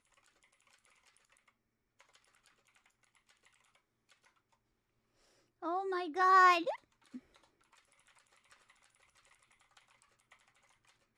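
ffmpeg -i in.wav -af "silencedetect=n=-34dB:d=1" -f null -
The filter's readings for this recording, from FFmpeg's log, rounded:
silence_start: 0.00
silence_end: 5.65 | silence_duration: 5.65
silence_start: 6.71
silence_end: 11.17 | silence_duration: 4.46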